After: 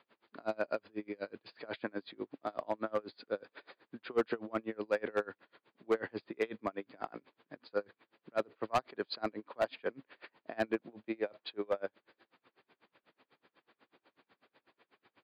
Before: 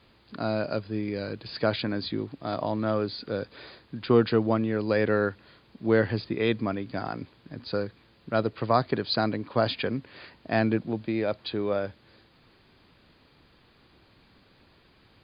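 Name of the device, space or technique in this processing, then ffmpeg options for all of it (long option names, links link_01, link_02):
helicopter radio: -af "highpass=360,lowpass=2700,aeval=exprs='val(0)*pow(10,-32*(0.5-0.5*cos(2*PI*8.1*n/s))/20)':channel_layout=same,asoftclip=type=hard:threshold=-23dB"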